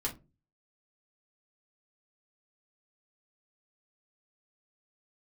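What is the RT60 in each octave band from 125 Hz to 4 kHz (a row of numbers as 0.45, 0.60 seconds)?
0.55, 0.45, 0.35, 0.20, 0.20, 0.15 seconds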